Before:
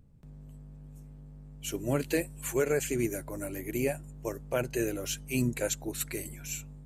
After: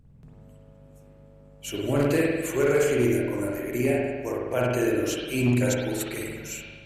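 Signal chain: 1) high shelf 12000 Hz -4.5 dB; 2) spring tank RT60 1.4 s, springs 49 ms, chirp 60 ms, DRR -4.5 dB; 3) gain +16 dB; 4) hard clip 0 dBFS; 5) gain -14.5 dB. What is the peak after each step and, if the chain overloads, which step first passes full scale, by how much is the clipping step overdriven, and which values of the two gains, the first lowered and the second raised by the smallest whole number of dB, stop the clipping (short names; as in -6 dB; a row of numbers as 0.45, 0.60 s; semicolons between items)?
-16.5, -10.0, +6.0, 0.0, -14.5 dBFS; step 3, 6.0 dB; step 3 +10 dB, step 5 -8.5 dB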